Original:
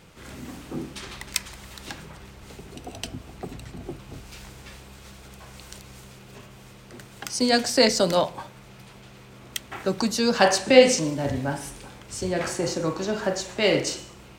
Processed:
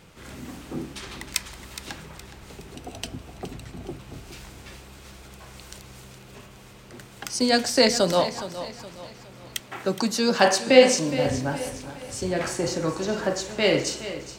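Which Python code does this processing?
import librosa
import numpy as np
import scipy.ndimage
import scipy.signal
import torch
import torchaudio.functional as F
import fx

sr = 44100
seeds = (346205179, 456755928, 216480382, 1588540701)

y = fx.highpass(x, sr, hz=130.0, slope=12, at=(9.6, 11.11))
y = fx.echo_feedback(y, sr, ms=417, feedback_pct=41, wet_db=-13.0)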